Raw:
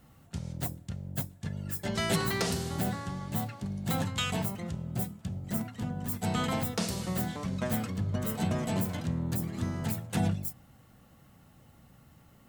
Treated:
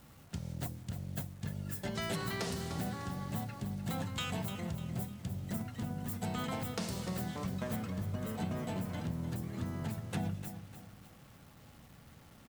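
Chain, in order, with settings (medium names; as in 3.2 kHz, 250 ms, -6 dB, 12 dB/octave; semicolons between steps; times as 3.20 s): treble shelf 5.6 kHz -3 dB, from 7.76 s -9.5 dB; compression 2.5:1, threshold -37 dBFS, peak gain reduction 9 dB; bit crusher 10-bit; feedback delay 300 ms, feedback 41%, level -11 dB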